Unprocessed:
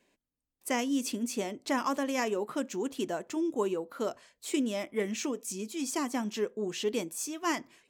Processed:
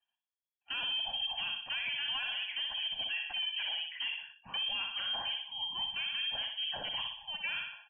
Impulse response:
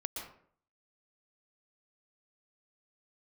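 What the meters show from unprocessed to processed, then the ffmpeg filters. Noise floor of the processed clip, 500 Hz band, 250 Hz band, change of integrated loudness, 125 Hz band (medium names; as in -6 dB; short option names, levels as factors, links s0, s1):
under -85 dBFS, -23.5 dB, under -30 dB, -1.5 dB, under -10 dB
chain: -filter_complex "[0:a]aresample=16000,asoftclip=type=hard:threshold=0.0376,aresample=44100,aecho=1:1:1.2:0.69,aecho=1:1:61|122|183|244|305|366:0.501|0.246|0.12|0.059|0.0289|0.0142,acrossover=split=81|240[s0][s1][s2];[s0]acompressor=threshold=0.002:ratio=4[s3];[s1]acompressor=threshold=0.0126:ratio=4[s4];[s2]acompressor=threshold=0.0251:ratio=4[s5];[s3][s4][s5]amix=inputs=3:normalize=0,lowpass=f=2900:t=q:w=0.5098,lowpass=f=2900:t=q:w=0.6013,lowpass=f=2900:t=q:w=0.9,lowpass=f=2900:t=q:w=2.563,afreqshift=-3400,alimiter=level_in=1.58:limit=0.0631:level=0:latency=1:release=13,volume=0.631,afftdn=nr=20:nf=-58"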